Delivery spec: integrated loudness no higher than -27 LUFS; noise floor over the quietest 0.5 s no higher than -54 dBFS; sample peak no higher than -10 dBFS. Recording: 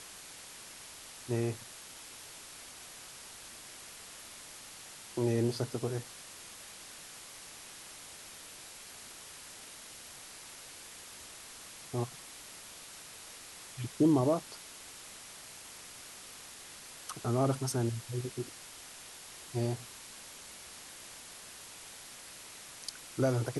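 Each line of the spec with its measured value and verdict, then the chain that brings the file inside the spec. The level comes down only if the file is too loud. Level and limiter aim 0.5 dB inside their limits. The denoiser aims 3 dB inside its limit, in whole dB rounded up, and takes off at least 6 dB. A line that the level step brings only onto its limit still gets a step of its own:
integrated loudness -39.0 LUFS: OK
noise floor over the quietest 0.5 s -50 dBFS: fail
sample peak -16.0 dBFS: OK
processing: denoiser 7 dB, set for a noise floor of -50 dBFS

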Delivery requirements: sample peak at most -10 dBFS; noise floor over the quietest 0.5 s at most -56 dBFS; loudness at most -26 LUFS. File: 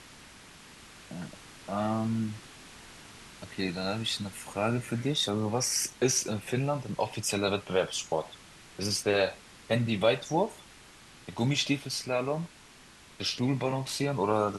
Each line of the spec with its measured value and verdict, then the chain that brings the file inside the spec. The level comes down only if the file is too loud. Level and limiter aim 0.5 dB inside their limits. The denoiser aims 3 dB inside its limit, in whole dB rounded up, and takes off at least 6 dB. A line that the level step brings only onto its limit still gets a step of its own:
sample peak -12.0 dBFS: OK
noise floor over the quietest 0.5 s -54 dBFS: fail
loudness -30.0 LUFS: OK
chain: denoiser 6 dB, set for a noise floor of -54 dBFS

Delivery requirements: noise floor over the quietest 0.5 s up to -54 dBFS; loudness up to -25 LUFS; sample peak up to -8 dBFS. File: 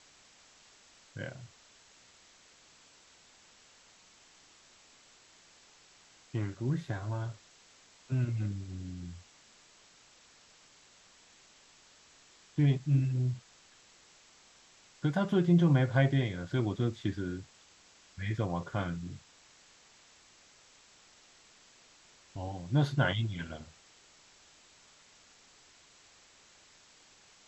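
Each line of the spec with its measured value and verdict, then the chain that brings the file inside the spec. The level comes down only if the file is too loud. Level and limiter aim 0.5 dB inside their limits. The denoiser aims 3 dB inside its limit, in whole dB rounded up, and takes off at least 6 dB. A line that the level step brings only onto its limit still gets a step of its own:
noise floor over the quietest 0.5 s -61 dBFS: OK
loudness -32.0 LUFS: OK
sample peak -13.5 dBFS: OK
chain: none

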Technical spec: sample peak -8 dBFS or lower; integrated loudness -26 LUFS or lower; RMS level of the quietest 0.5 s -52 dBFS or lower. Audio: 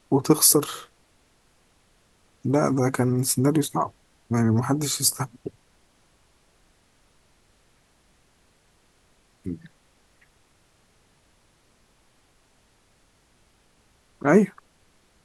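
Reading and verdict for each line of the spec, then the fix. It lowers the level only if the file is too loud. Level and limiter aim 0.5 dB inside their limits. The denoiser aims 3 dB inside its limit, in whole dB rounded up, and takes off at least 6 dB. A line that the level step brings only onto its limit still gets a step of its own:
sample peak -4.0 dBFS: fail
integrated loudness -22.5 LUFS: fail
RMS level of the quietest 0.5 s -62 dBFS: OK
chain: gain -4 dB; limiter -8.5 dBFS

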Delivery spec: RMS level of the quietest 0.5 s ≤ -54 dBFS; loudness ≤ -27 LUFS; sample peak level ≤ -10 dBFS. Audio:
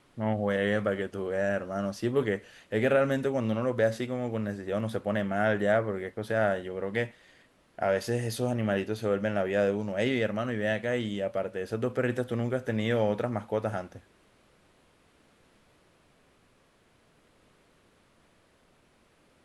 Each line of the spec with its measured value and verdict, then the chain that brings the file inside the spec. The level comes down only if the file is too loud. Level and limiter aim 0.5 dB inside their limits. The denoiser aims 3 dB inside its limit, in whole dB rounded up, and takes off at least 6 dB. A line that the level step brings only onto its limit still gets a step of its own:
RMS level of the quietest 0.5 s -64 dBFS: OK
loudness -29.5 LUFS: OK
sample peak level -12.5 dBFS: OK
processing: none

